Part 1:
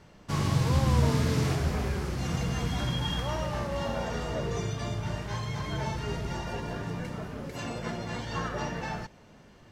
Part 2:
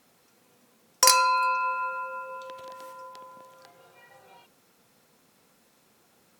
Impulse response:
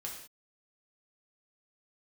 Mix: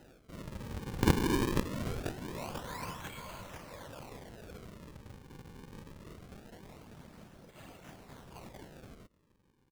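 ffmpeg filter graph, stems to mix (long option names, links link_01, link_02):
-filter_complex "[0:a]highshelf=frequency=3800:gain=9,volume=-11.5dB[link_01];[1:a]aemphasis=mode=production:type=75fm,aeval=exprs='val(0)*pow(10,-29*(0.5-0.5*cos(2*PI*0.72*n/s))/20)':channel_layout=same,volume=0dB,asplit=2[link_02][link_03];[link_03]volume=-6.5dB,aecho=0:1:493|986|1479|1972|2465|2958|3451|3944:1|0.55|0.303|0.166|0.0915|0.0503|0.0277|0.0152[link_04];[link_01][link_02][link_04]amix=inputs=3:normalize=0,afftfilt=real='hypot(re,im)*cos(2*PI*random(0))':imag='hypot(re,im)*sin(2*PI*random(1))':win_size=512:overlap=0.75,acrusher=samples=38:mix=1:aa=0.000001:lfo=1:lforange=60.8:lforate=0.23"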